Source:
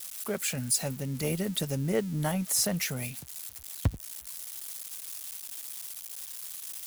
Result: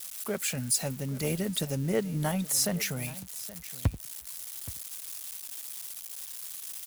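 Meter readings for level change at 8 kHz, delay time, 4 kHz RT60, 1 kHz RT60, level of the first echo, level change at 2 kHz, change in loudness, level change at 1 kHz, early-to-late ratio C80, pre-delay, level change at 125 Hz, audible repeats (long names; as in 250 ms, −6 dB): 0.0 dB, 823 ms, no reverb audible, no reverb audible, −17.5 dB, 0.0 dB, 0.0 dB, 0.0 dB, no reverb audible, no reverb audible, 0.0 dB, 1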